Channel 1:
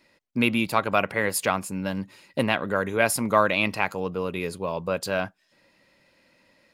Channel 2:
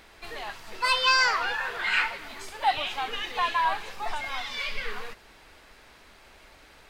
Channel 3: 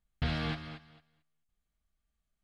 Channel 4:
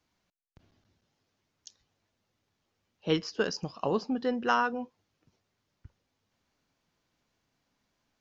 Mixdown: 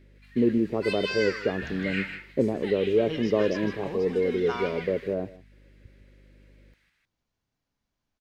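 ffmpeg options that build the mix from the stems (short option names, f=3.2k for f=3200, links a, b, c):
-filter_complex "[0:a]lowpass=f=410:t=q:w=4.2,aeval=exprs='val(0)+0.00282*(sin(2*PI*50*n/s)+sin(2*PI*2*50*n/s)/2+sin(2*PI*3*50*n/s)/3+sin(2*PI*4*50*n/s)/4+sin(2*PI*5*50*n/s)/5)':c=same,volume=-3dB,asplit=3[a][b][c];[b]volume=-19.5dB[d];[1:a]highpass=f=1.9k:t=q:w=2.5,volume=-13.5dB,asplit=2[e][f];[f]volume=-8dB[g];[2:a]adelay=1400,volume=-10dB[h];[3:a]lowshelf=f=110:g=12,volume=-8.5dB,asplit=2[i][j];[j]volume=-10dB[k];[c]apad=whole_len=304073[l];[e][l]sidechaingate=range=-7dB:threshold=-43dB:ratio=16:detection=peak[m];[d][g][k]amix=inputs=3:normalize=0,aecho=0:1:157:1[n];[a][m][h][i][n]amix=inputs=5:normalize=0"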